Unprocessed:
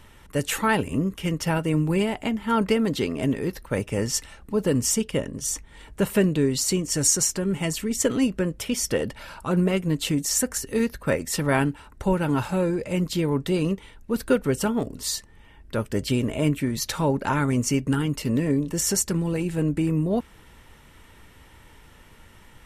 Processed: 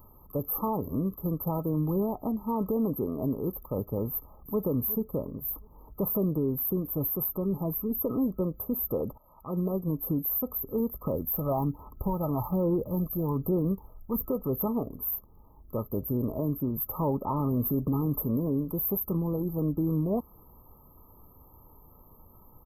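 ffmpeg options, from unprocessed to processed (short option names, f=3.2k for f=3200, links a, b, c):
-filter_complex "[0:a]asplit=2[a][b];[b]afade=t=in:st=4.09:d=0.01,afade=t=out:st=4.59:d=0.01,aecho=0:1:360|720|1080:0.211349|0.0634047|0.0190214[c];[a][c]amix=inputs=2:normalize=0,asettb=1/sr,asplit=3[d][e][f];[d]atrim=end=11.044[g];[e]atrim=start=11.04:end=14.25,asetpts=PTS-STARTPTS,afade=t=in:d=0.004:c=qsin,afade=t=out:st=3.206:d=0.004:c=qsin,aphaser=in_gain=1:out_gain=1:delay=1.6:decay=0.49:speed=1.2:type=sinusoidal[h];[f]atrim=start=14.246[i];[g][h]acrossfade=d=0.004:c1=hsin:c2=qsin[j];[j][i]acrossfade=d=0.004:c1=qsin:c2=hsin,asettb=1/sr,asplit=3[k][l][m];[k]atrim=end=17.404[n];[l]atrim=start=17.4:end=18.25,asetpts=PTS-STARTPTS,afade=t=in:d=0.004:c=qsin,afade=t=out:st=0.846:d=0.004:c=qsin,acontrast=45[o];[m]atrim=start=18.246[p];[n][o]acrossfade=d=0.004:c1=hsin:c2=qsin[q];[q][p]acrossfade=d=0.004:c1=qsin:c2=hsin,asplit=2[r][s];[r]atrim=end=9.18,asetpts=PTS-STARTPTS,afade=t=out:st=9.176:d=0.004:c=hsin:silence=0.11885[t];[s]atrim=start=9.18,asetpts=PTS-STARTPTS,afade=t=in:d=0.75:silence=0.11885[u];[t][u]concat=n=2:v=0:a=1,afftfilt=real='re*(1-between(b*sr/4096,1300,12000))':imag='im*(1-between(b*sr/4096,1300,12000))':win_size=4096:overlap=0.75,aemphasis=mode=production:type=75kf,alimiter=limit=-15.5dB:level=0:latency=1:release=53,volume=-4dB"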